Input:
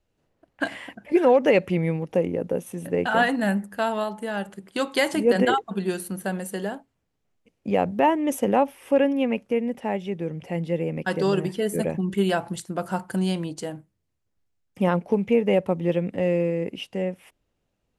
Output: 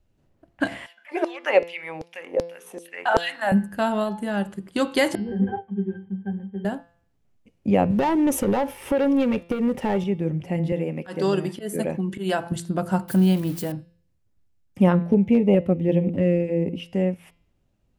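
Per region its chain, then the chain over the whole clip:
0:00.86–0:03.52: high-shelf EQ 3,800 Hz −4.5 dB + mains-hum notches 60/120/180/240/300/360/420/480 Hz + auto-filter high-pass saw down 2.6 Hz 470–5,300 Hz
0:05.15–0:06.65: variable-slope delta modulation 16 kbit/s + resonances in every octave G, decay 0.15 s
0:07.90–0:10.04: comb filter 2.2 ms, depth 32% + downward compressor 2.5 to 1, threshold −28 dBFS + leveller curve on the samples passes 2
0:10.72–0:12.52: high-pass filter 390 Hz 6 dB per octave + volume swells 122 ms
0:13.08–0:13.72: spike at every zero crossing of −26.5 dBFS + parametric band 7,000 Hz −8 dB 1 octave
0:14.92–0:16.86: parametric band 8,000 Hz −6.5 dB 2.6 octaves + auto-filter notch saw up 1.6 Hz 760–1,800 Hz + hard clipping −11 dBFS
whole clip: low-shelf EQ 300 Hz +10 dB; notch filter 460 Hz, Q 12; hum removal 170.7 Hz, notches 32

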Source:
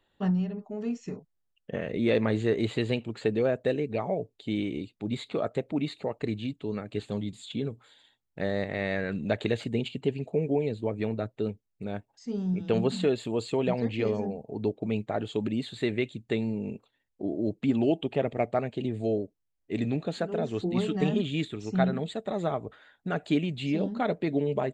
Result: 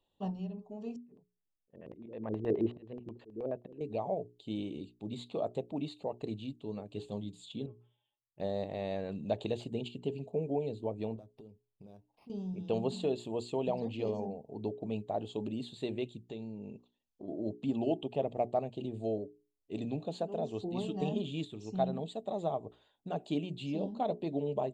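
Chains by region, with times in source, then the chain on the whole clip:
0:00.96–0:03.81: volume swells 444 ms + auto-filter low-pass square 9.4 Hz 350–1,800 Hz
0:07.66–0:08.40: Butterworth low-pass 3,300 Hz 96 dB per octave + tuned comb filter 120 Hz, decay 0.16 s, harmonics odd, mix 90%
0:11.16–0:12.30: downward compressor 10 to 1, threshold −40 dBFS + linearly interpolated sample-rate reduction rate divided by 6×
0:16.26–0:17.28: bad sample-rate conversion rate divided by 3×, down none, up filtered + downward compressor 2.5 to 1, threshold −33 dBFS
whole clip: flat-topped bell 1,700 Hz −14 dB 1 octave; mains-hum notches 60/120/180/240/300/360/420 Hz; dynamic equaliser 720 Hz, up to +5 dB, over −42 dBFS, Q 1.6; level −7.5 dB

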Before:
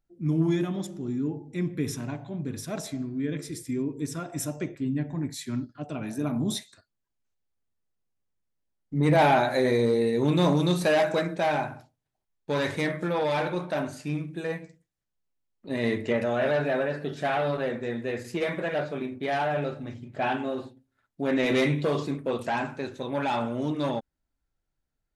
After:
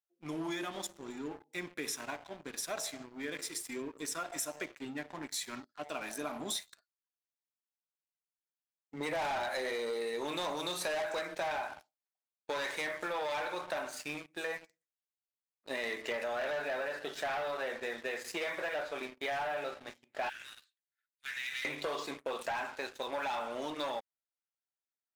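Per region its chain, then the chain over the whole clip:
0:20.29–0:21.65: Butterworth high-pass 1,500 Hz 48 dB per octave + downward compressor 3 to 1, threshold −41 dBFS
whole clip: high-pass filter 710 Hz 12 dB per octave; leveller curve on the samples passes 3; downward compressor, threshold −27 dBFS; level −7 dB

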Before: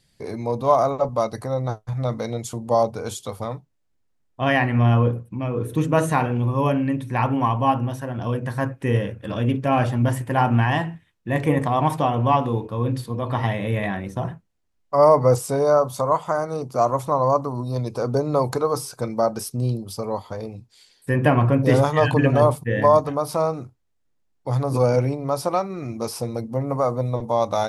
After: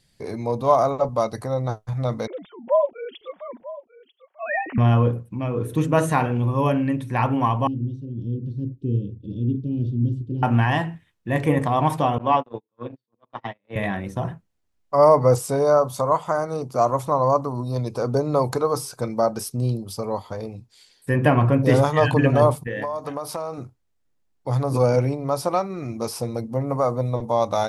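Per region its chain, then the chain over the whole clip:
0:02.27–0:04.78: three sine waves on the formant tracks + flanger 1.5 Hz, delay 2.7 ms, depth 3.9 ms, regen −26% + single-tap delay 942 ms −17 dB
0:07.67–0:10.43: elliptic band-stop filter 370–3,700 Hz + head-to-tape spacing loss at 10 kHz 40 dB
0:12.18–0:13.76: noise gate −21 dBFS, range −48 dB + three-way crossover with the lows and the highs turned down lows −14 dB, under 200 Hz, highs −22 dB, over 5,700 Hz
0:22.67–0:23.58: low-shelf EQ 220 Hz −11 dB + downward compressor 16 to 1, threshold −23 dBFS
whole clip: no processing

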